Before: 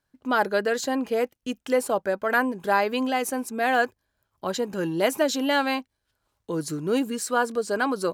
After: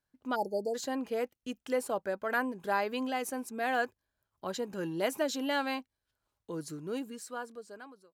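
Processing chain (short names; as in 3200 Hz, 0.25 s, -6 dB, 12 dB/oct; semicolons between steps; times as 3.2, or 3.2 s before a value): ending faded out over 1.91 s; spectral delete 0.35–0.75, 940–4300 Hz; gain -8.5 dB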